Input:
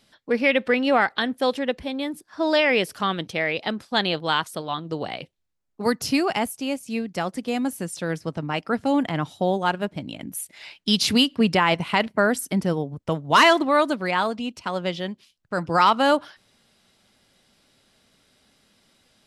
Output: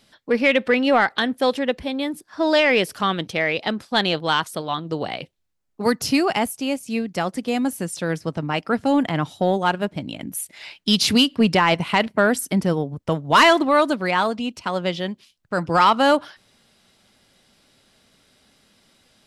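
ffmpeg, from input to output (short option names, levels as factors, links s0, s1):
-af "acontrast=53,volume=0.708"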